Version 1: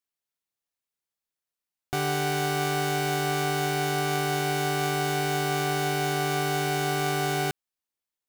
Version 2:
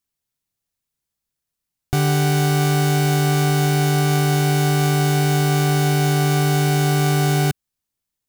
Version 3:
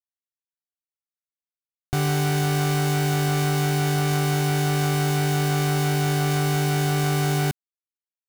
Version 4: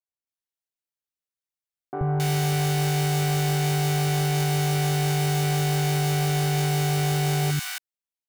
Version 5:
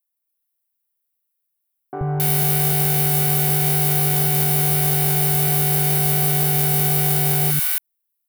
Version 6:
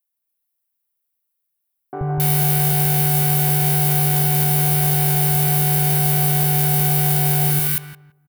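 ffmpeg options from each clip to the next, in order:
ffmpeg -i in.wav -af "bass=frequency=250:gain=13,treble=frequency=4000:gain=4,volume=3.5dB" out.wav
ffmpeg -i in.wav -af "aeval=exprs='val(0)*gte(abs(val(0)),0.0668)':channel_layout=same,volume=-4.5dB" out.wav
ffmpeg -i in.wav -filter_complex "[0:a]acrossover=split=260|1200[link_01][link_02][link_03];[link_01]adelay=80[link_04];[link_03]adelay=270[link_05];[link_04][link_02][link_05]amix=inputs=3:normalize=0" out.wav
ffmpeg -i in.wav -af "aexciter=amount=4.2:drive=8.3:freq=9300,volume=1.5dB" out.wav
ffmpeg -i in.wav -filter_complex "[0:a]asplit=2[link_01][link_02];[link_02]adelay=169,lowpass=frequency=1000:poles=1,volume=-4dB,asplit=2[link_03][link_04];[link_04]adelay=169,lowpass=frequency=1000:poles=1,volume=0.28,asplit=2[link_05][link_06];[link_06]adelay=169,lowpass=frequency=1000:poles=1,volume=0.28,asplit=2[link_07][link_08];[link_08]adelay=169,lowpass=frequency=1000:poles=1,volume=0.28[link_09];[link_01][link_03][link_05][link_07][link_09]amix=inputs=5:normalize=0" out.wav

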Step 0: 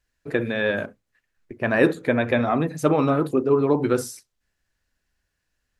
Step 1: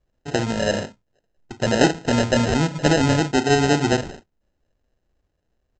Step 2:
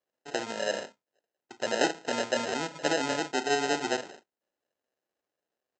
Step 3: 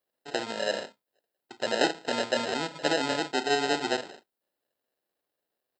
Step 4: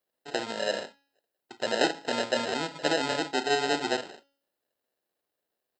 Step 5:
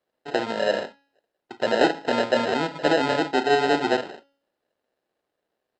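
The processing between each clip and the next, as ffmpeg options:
ffmpeg -i in.wav -af "bass=frequency=250:gain=6,treble=frequency=4000:gain=7,aresample=16000,acrusher=samples=14:mix=1:aa=0.000001,aresample=44100" out.wav
ffmpeg -i in.wav -af "highpass=410,volume=-7dB" out.wav
ffmpeg -i in.wav -af "aexciter=amount=1.4:drive=2.5:freq=3500,volume=1dB" out.wav
ffmpeg -i in.wav -af "bandreject=frequency=278.4:width_type=h:width=4,bandreject=frequency=556.8:width_type=h:width=4,bandreject=frequency=835.2:width_type=h:width=4,bandreject=frequency=1113.6:width_type=h:width=4,bandreject=frequency=1392:width_type=h:width=4,bandreject=frequency=1670.4:width_type=h:width=4,bandreject=frequency=1948.8:width_type=h:width=4,bandreject=frequency=2227.2:width_type=h:width=4,bandreject=frequency=2505.6:width_type=h:width=4,bandreject=frequency=2784:width_type=h:width=4,bandreject=frequency=3062.4:width_type=h:width=4,bandreject=frequency=3340.8:width_type=h:width=4,bandreject=frequency=3619.2:width_type=h:width=4,bandreject=frequency=3897.6:width_type=h:width=4,bandreject=frequency=4176:width_type=h:width=4,bandreject=frequency=4454.4:width_type=h:width=4,bandreject=frequency=4732.8:width_type=h:width=4,bandreject=frequency=5011.2:width_type=h:width=4,bandreject=frequency=5289.6:width_type=h:width=4,bandreject=frequency=5568:width_type=h:width=4,bandreject=frequency=5846.4:width_type=h:width=4,bandreject=frequency=6124.8:width_type=h:width=4,bandreject=frequency=6403.2:width_type=h:width=4" out.wav
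ffmpeg -i in.wav -af "acontrast=81,aemphasis=mode=reproduction:type=75fm" out.wav

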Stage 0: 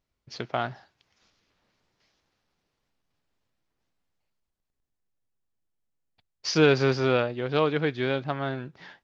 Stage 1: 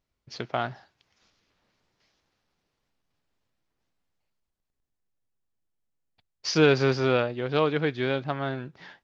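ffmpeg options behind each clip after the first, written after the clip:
ffmpeg -i in.wav -af anull out.wav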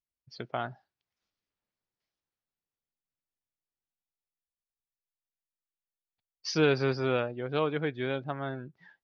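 ffmpeg -i in.wav -af "afftdn=noise_reduction=16:noise_floor=-40,volume=-5dB" out.wav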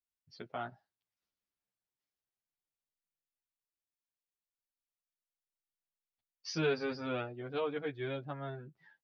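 ffmpeg -i in.wav -filter_complex "[0:a]asplit=2[link_01][link_02];[link_02]adelay=9.6,afreqshift=0.32[link_03];[link_01][link_03]amix=inputs=2:normalize=1,volume=-4dB" out.wav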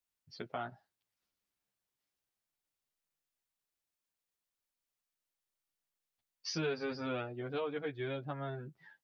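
ffmpeg -i in.wav -af "acompressor=threshold=-42dB:ratio=2,volume=4dB" out.wav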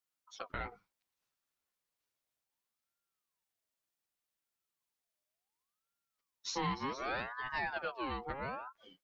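ffmpeg -i in.wav -af "aeval=exprs='val(0)*sin(2*PI*1000*n/s+1000*0.4/0.67*sin(2*PI*0.67*n/s))':channel_layout=same,volume=2.5dB" out.wav

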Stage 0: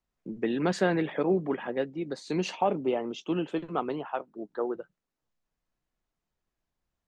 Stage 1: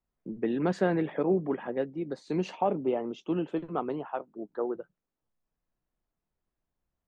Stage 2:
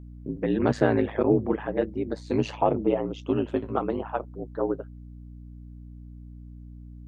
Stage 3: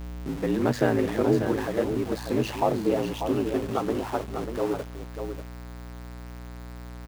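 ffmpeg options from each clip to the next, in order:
ffmpeg -i in.wav -af "highshelf=frequency=2000:gain=-11" out.wav
ffmpeg -i in.wav -af "aeval=exprs='val(0)*sin(2*PI*54*n/s)':channel_layout=same,aeval=exprs='val(0)+0.00355*(sin(2*PI*60*n/s)+sin(2*PI*2*60*n/s)/2+sin(2*PI*3*60*n/s)/3+sin(2*PI*4*60*n/s)/4+sin(2*PI*5*60*n/s)/5)':channel_layout=same,volume=7.5dB" out.wav
ffmpeg -i in.wav -af "aeval=exprs='val(0)+0.5*0.0282*sgn(val(0))':channel_layout=same,aecho=1:1:592:0.422,volume=-2dB" out.wav

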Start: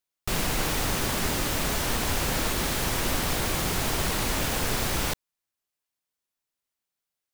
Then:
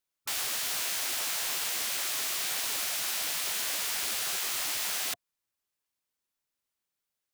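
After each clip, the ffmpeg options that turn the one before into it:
ffmpeg -i in.wav -af "bandreject=frequency=700:width=12,afftfilt=real='re*lt(hypot(re,im),0.0501)':imag='im*lt(hypot(re,im),0.0501)':win_size=1024:overlap=0.75" out.wav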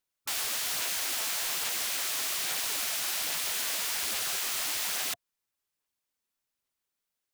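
ffmpeg -i in.wav -af "aphaser=in_gain=1:out_gain=1:delay=4.6:decay=0.23:speed=1.2:type=sinusoidal" out.wav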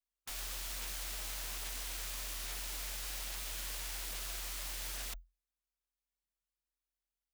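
ffmpeg -i in.wav -af "aeval=exprs='max(val(0),0)':channel_layout=same,afreqshift=-43,volume=-6.5dB" out.wav

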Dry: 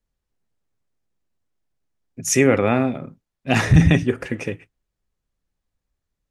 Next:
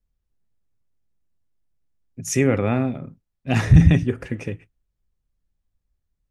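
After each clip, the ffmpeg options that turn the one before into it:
ffmpeg -i in.wav -af "lowshelf=frequency=170:gain=12,volume=-6dB" out.wav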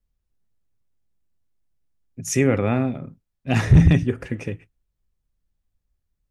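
ffmpeg -i in.wav -af "volume=6dB,asoftclip=hard,volume=-6dB" out.wav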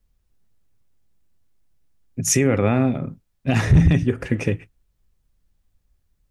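ffmpeg -i in.wav -af "alimiter=limit=-16dB:level=0:latency=1:release=420,volume=8.5dB" out.wav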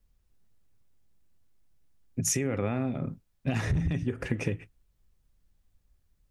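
ffmpeg -i in.wav -af "acompressor=threshold=-23dB:ratio=8,volume=-2dB" out.wav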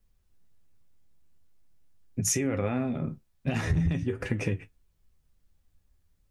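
ffmpeg -i in.wav -af "flanger=delay=9.7:depth=4.2:regen=50:speed=0.46:shape=triangular,volume=5dB" out.wav

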